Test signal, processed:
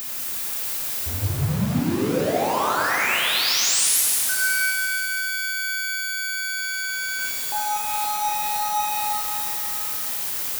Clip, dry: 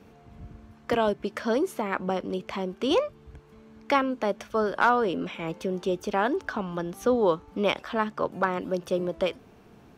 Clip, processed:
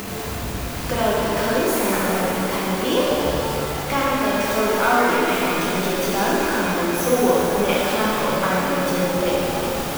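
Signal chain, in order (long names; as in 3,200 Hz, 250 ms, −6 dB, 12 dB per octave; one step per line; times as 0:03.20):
converter with a step at zero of −26.5 dBFS
high-shelf EQ 11,000 Hz +9.5 dB
upward compression, threshold −28 dBFS
reverb with rising layers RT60 3.3 s, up +7 semitones, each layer −8 dB, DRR −6.5 dB
level −3.5 dB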